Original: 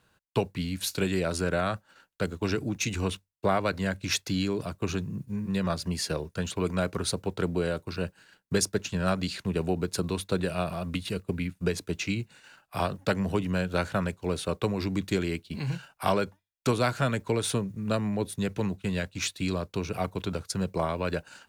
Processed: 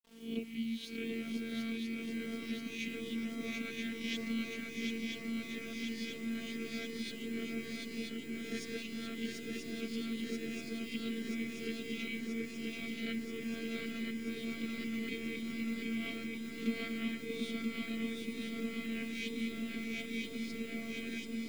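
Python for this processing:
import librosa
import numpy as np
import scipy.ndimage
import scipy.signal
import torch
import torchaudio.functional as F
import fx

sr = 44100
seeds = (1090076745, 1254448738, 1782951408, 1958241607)

y = fx.spec_swells(x, sr, rise_s=0.6)
y = fx.vowel_filter(y, sr, vowel='i')
y = fx.quant_dither(y, sr, seeds[0], bits=10, dither='none')
y = fx.robotise(y, sr, hz=227.0)
y = fx.echo_swing(y, sr, ms=982, ratio=3, feedback_pct=77, wet_db=-3)
y = y * 10.0 ** (2.0 / 20.0)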